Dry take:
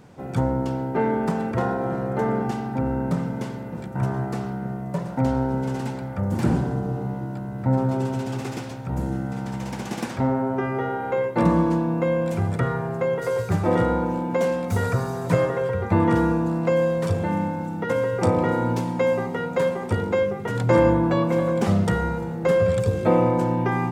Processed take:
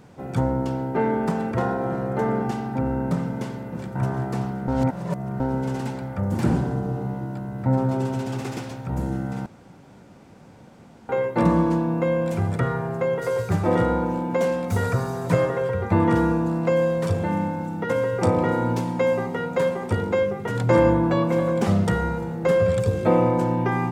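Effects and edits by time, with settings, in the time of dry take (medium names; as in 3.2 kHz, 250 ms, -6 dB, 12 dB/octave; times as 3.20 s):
3.36–4.12 s: echo throw 380 ms, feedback 55%, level -11 dB
4.68–5.40 s: reverse
9.46–11.09 s: room tone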